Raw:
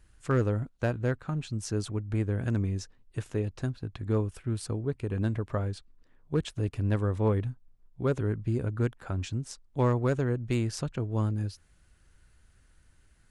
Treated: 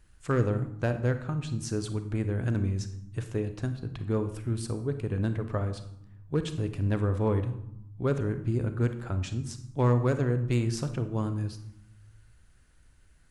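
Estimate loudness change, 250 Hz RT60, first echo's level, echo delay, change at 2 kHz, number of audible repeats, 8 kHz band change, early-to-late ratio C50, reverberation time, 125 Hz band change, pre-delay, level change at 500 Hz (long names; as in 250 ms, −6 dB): +1.0 dB, 1.2 s, no echo audible, no echo audible, +0.5 dB, no echo audible, +0.5 dB, 10.5 dB, 0.75 s, +1.0 dB, 32 ms, +0.5 dB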